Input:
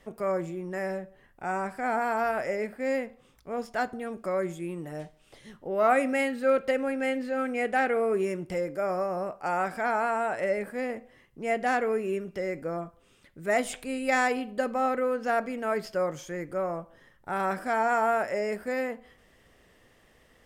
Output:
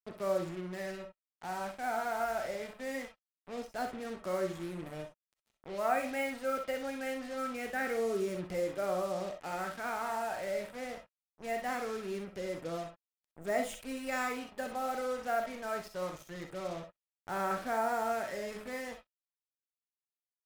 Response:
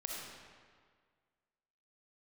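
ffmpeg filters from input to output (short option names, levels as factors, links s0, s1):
-filter_complex "[0:a]aphaser=in_gain=1:out_gain=1:delay=1.4:decay=0.35:speed=0.23:type=sinusoidal,bandreject=f=71.29:t=h:w=4,bandreject=f=142.58:t=h:w=4,bandreject=f=213.87:t=h:w=4,bandreject=f=285.16:t=h:w=4,bandreject=f=356.45:t=h:w=4,bandreject=f=427.74:t=h:w=4,bandreject=f=499.03:t=h:w=4,bandreject=f=570.32:t=h:w=4,bandreject=f=641.61:t=h:w=4,bandreject=f=712.9:t=h:w=4,bandreject=f=784.19:t=h:w=4,bandreject=f=855.48:t=h:w=4,bandreject=f=926.77:t=h:w=4,bandreject=f=998.06:t=h:w=4,bandreject=f=1069.35:t=h:w=4,bandreject=f=1140.64:t=h:w=4,bandreject=f=1211.93:t=h:w=4,bandreject=f=1283.22:t=h:w=4,bandreject=f=1354.51:t=h:w=4,bandreject=f=1425.8:t=h:w=4,bandreject=f=1497.09:t=h:w=4,bandreject=f=1568.38:t=h:w=4,bandreject=f=1639.67:t=h:w=4,bandreject=f=1710.96:t=h:w=4,bandreject=f=1782.25:t=h:w=4,bandreject=f=1853.54:t=h:w=4,bandreject=f=1924.83:t=h:w=4,bandreject=f=1996.12:t=h:w=4,bandreject=f=2067.41:t=h:w=4,bandreject=f=2138.7:t=h:w=4,bandreject=f=2209.99:t=h:w=4,bandreject=f=2281.28:t=h:w=4,bandreject=f=2352.57:t=h:w=4,bandreject=f=2423.86:t=h:w=4,bandreject=f=2495.15:t=h:w=4,bandreject=f=2566.44:t=h:w=4,bandreject=f=2637.73:t=h:w=4,bandreject=f=2709.02:t=h:w=4,acrusher=bits=5:mix=0:aa=0.5[s0];[1:a]atrim=start_sample=2205,atrim=end_sample=3087[s1];[s0][s1]afir=irnorm=-1:irlink=0,volume=0.531"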